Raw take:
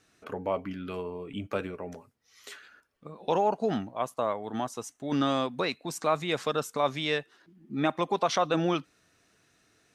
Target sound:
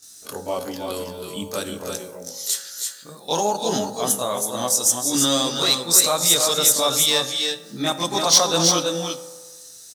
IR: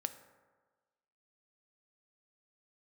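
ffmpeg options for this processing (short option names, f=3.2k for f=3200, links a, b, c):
-filter_complex "[0:a]aecho=1:1:273|320|336:0.106|0.422|0.398,asplit=2[a][b];[1:a]atrim=start_sample=2205,highshelf=f=4.8k:g=7.5,adelay=24[c];[b][c]afir=irnorm=-1:irlink=0,volume=6dB[d];[a][d]amix=inputs=2:normalize=0,aexciter=amount=4.2:drive=9.9:freq=3.7k,volume=-3.5dB"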